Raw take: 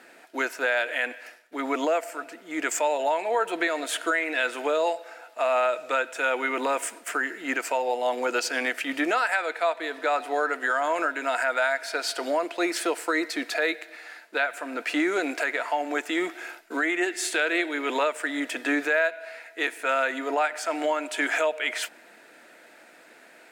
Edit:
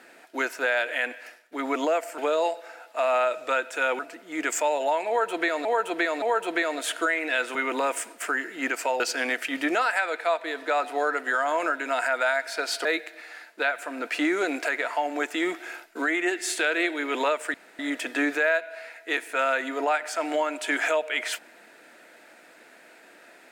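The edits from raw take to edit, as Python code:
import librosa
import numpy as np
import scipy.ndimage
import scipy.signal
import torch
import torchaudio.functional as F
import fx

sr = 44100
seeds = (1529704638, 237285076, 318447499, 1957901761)

y = fx.edit(x, sr, fx.repeat(start_s=3.27, length_s=0.57, count=3),
    fx.move(start_s=4.6, length_s=1.81, to_s=2.18),
    fx.cut(start_s=7.86, length_s=0.5),
    fx.cut(start_s=12.21, length_s=1.39),
    fx.insert_room_tone(at_s=18.29, length_s=0.25), tone=tone)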